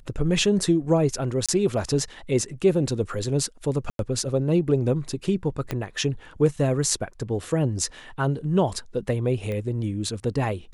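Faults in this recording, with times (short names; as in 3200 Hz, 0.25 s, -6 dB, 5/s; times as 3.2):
1.46–1.49 gap 26 ms
3.9–3.99 gap 92 ms
5.71 pop -13 dBFS
9.52 pop -20 dBFS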